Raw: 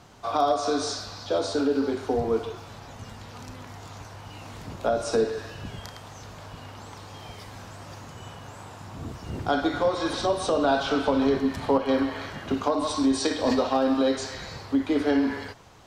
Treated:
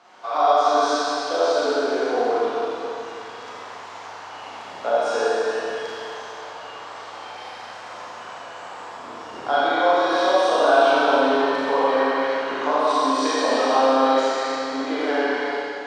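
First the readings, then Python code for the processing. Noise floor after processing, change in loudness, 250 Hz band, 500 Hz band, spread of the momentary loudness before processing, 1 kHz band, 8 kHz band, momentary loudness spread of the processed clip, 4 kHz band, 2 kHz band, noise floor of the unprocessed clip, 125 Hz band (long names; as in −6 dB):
−38 dBFS, +5.0 dB, −2.0 dB, +6.0 dB, 19 LU, +9.5 dB, +1.5 dB, 19 LU, +5.0 dB, +10.0 dB, −44 dBFS, below −15 dB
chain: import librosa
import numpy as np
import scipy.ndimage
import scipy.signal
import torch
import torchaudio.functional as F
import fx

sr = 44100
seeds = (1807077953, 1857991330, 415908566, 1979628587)

p1 = fx.bandpass_edges(x, sr, low_hz=630.0, high_hz=6900.0)
p2 = fx.high_shelf(p1, sr, hz=3000.0, db=-9.5)
p3 = p2 + fx.echo_single(p2, sr, ms=84, db=-10.0, dry=0)
p4 = fx.rev_schroeder(p3, sr, rt60_s=2.8, comb_ms=30, drr_db=-8.0)
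y = p4 * 10.0 ** (2.5 / 20.0)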